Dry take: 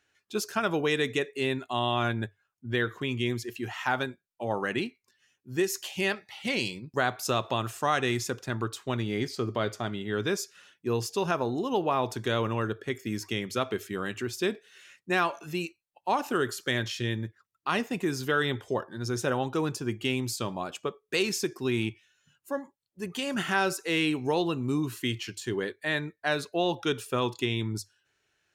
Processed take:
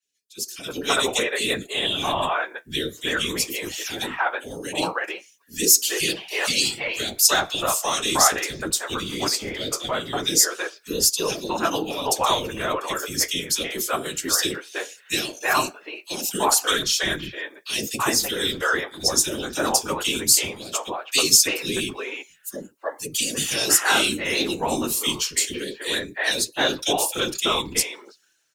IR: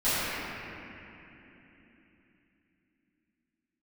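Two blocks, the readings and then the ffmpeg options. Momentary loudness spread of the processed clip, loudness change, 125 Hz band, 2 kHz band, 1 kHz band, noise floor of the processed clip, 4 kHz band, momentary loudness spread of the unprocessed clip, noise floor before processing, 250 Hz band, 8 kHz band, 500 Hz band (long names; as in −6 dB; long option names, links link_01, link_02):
12 LU, +8.0 dB, −5.0 dB, +6.0 dB, +5.5 dB, −55 dBFS, +12.5 dB, 8 LU, −80 dBFS, +0.5 dB, +20.0 dB, +2.0 dB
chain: -filter_complex "[0:a]bass=frequency=250:gain=-13,treble=frequency=4000:gain=11,afftfilt=real='hypot(re,im)*cos(2*PI*random(0))':imag='hypot(re,im)*sin(2*PI*random(1))':win_size=512:overlap=0.75,acrossover=split=450|2400[link_01][link_02][link_03];[link_01]adelay=30[link_04];[link_02]adelay=330[link_05];[link_04][link_05][link_03]amix=inputs=3:normalize=0,flanger=delay=3.9:depth=9.8:regen=-48:speed=0.18:shape=triangular,dynaudnorm=framelen=160:gausssize=9:maxgain=15dB,adynamicequalizer=threshold=0.0112:dfrequency=2800:dqfactor=0.7:tfrequency=2800:tqfactor=0.7:attack=5:release=100:ratio=0.375:range=2:mode=boostabove:tftype=highshelf,volume=1.5dB"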